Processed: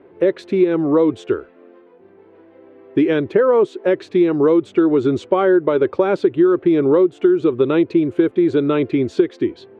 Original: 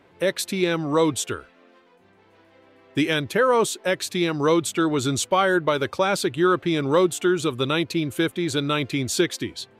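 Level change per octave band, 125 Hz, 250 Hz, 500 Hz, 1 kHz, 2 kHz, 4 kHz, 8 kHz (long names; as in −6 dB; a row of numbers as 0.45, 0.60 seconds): +0.5 dB, +8.0 dB, +7.5 dB, −1.5 dB, −4.0 dB, below −10 dB, below −20 dB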